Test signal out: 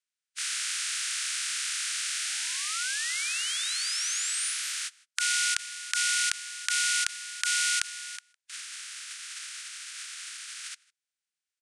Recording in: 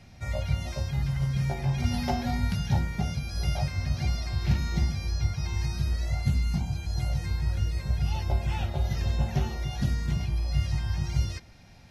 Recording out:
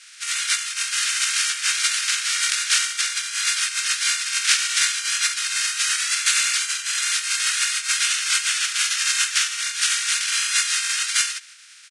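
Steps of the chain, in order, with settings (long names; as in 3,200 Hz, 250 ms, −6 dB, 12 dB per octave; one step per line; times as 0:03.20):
compressing power law on the bin magnitudes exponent 0.18
Chebyshev band-pass filter 1,400–9,500 Hz, order 4
slap from a distant wall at 27 metres, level −24 dB
level +8.5 dB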